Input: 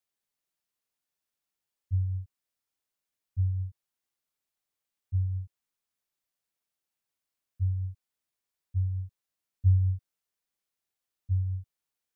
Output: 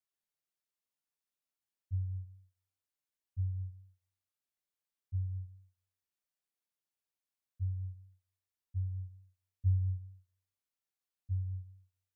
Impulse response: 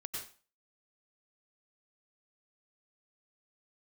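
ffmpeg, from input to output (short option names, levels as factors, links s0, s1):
-filter_complex "[0:a]asplit=2[s0][s1];[1:a]atrim=start_sample=2205,asetrate=29106,aresample=44100[s2];[s1][s2]afir=irnorm=-1:irlink=0,volume=0.112[s3];[s0][s3]amix=inputs=2:normalize=0,volume=0.398"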